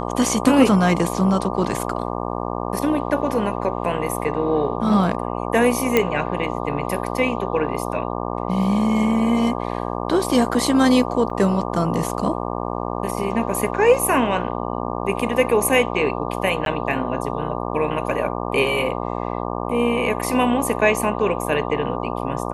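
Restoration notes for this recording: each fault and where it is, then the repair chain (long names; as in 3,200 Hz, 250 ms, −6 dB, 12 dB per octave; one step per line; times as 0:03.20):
mains buzz 60 Hz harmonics 20 −26 dBFS
0:05.97: click −3 dBFS
0:11.30: drop-out 3.8 ms
0:16.65–0:16.66: drop-out 12 ms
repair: click removal
hum removal 60 Hz, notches 20
repair the gap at 0:11.30, 3.8 ms
repair the gap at 0:16.65, 12 ms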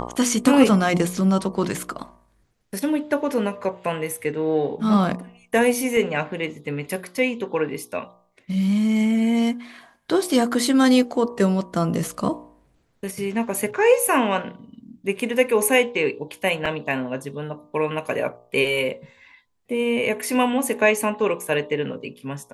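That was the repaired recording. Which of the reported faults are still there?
none of them is left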